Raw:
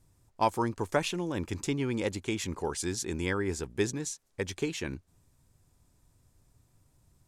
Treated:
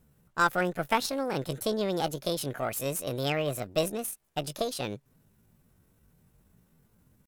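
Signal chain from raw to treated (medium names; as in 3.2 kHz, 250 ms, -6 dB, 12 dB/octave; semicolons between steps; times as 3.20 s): Chebyshev shaper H 8 -27 dB, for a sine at -12.5 dBFS; pitch shift +7.5 st; trim +1.5 dB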